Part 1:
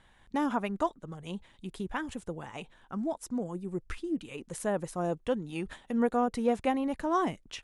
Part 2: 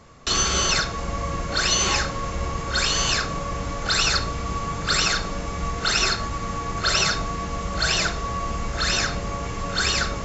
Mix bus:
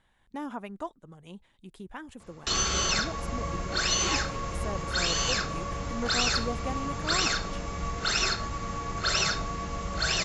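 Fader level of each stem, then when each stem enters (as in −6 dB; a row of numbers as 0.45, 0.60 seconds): −7.0, −5.5 decibels; 0.00, 2.20 seconds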